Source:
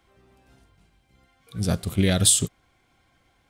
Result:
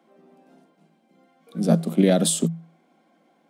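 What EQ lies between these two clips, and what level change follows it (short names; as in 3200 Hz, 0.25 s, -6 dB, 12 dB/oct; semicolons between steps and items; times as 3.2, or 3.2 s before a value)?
rippled Chebyshev high-pass 160 Hz, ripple 9 dB; tilt shelf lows +4.5 dB, about 770 Hz; bell 320 Hz +7 dB 0.44 oct; +7.5 dB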